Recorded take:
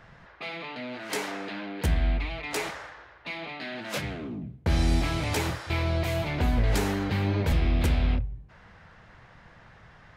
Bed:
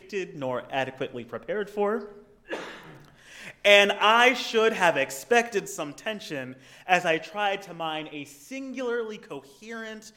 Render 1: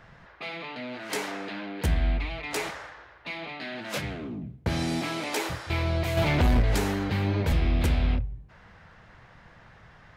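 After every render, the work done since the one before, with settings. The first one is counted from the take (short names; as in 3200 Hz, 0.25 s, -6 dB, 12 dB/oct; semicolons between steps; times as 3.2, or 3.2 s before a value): 4.68–5.49 HPF 83 Hz -> 330 Hz 24 dB/oct; 6.17–6.62 sample leveller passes 2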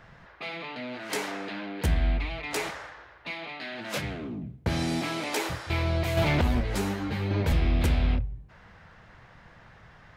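3.34–3.79 low shelf 360 Hz -6 dB; 6.41–7.31 ensemble effect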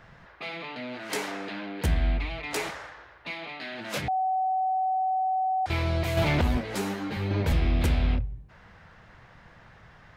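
4.08–5.66 bleep 754 Hz -23 dBFS; 6.57–7.17 HPF 160 Hz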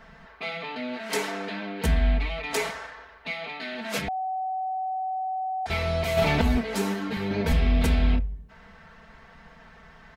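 comb 4.5 ms, depth 91%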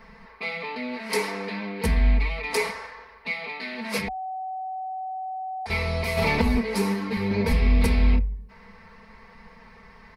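ripple EQ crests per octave 0.89, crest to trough 9 dB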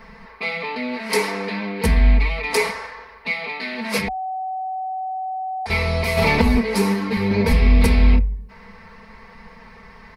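gain +5.5 dB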